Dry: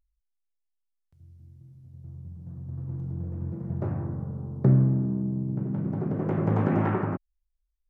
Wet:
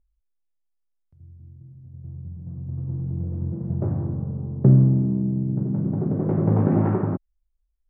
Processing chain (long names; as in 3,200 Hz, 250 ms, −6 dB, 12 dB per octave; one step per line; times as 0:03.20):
tilt shelving filter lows +10 dB, about 1,400 Hz
level −4.5 dB